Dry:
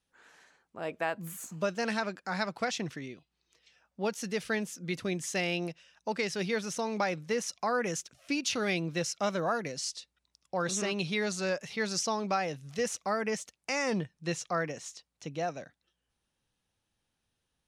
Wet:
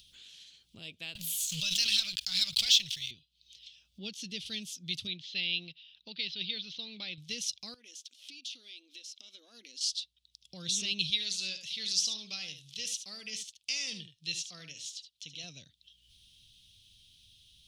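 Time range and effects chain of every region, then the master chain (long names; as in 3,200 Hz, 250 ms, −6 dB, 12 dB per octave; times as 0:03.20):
0:01.15–0:03.11: guitar amp tone stack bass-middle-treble 10-0-10 + leveller curve on the samples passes 3 + background raised ahead of every attack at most 38 dB per second
0:04.00–0:04.46: low-pass filter 3,800 Hz 6 dB per octave + parametric band 310 Hz +7.5 dB 0.59 octaves
0:05.07–0:07.18: Chebyshev low-pass filter 4,200 Hz, order 4 + low-shelf EQ 150 Hz −9.5 dB
0:07.74–0:09.81: downward compressor 5 to 1, threshold −46 dBFS + linear-phase brick-wall high-pass 220 Hz
0:11.10–0:15.44: low-shelf EQ 390 Hz −10.5 dB + single-tap delay 74 ms −10 dB
whole clip: drawn EQ curve 100 Hz 0 dB, 890 Hz −29 dB, 1,700 Hz −22 dB, 3,300 Hz +13 dB, 7,200 Hz −1 dB; upward compression, threshold −45 dBFS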